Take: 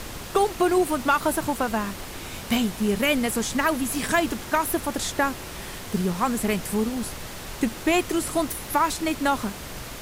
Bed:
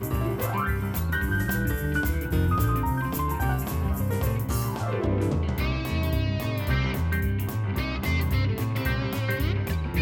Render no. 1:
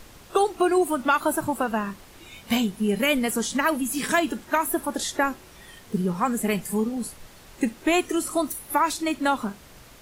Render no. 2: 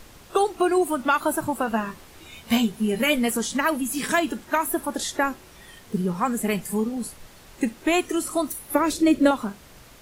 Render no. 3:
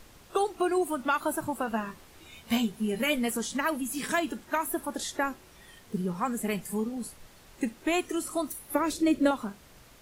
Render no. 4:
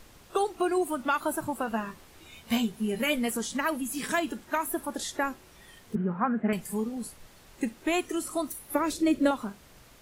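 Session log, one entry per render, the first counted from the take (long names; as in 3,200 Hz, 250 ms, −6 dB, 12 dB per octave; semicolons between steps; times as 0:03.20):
noise reduction from a noise print 12 dB
0:01.66–0:03.37: double-tracking delay 13 ms −6 dB; 0:08.75–0:09.31: low shelf with overshoot 640 Hz +7 dB, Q 3
level −6 dB
0:05.95–0:06.53: loudspeaker in its box 100–2,200 Hz, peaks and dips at 220 Hz +7 dB, 680 Hz +5 dB, 1,500 Hz +8 dB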